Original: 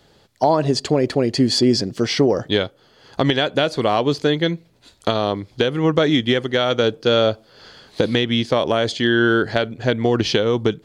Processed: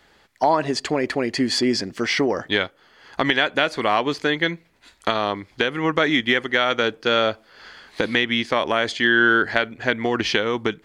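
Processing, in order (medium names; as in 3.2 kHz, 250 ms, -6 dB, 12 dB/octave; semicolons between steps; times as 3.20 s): graphic EQ 125/500/1000/2000/4000 Hz -10/-4/+3/+9/-3 dB; trim -2 dB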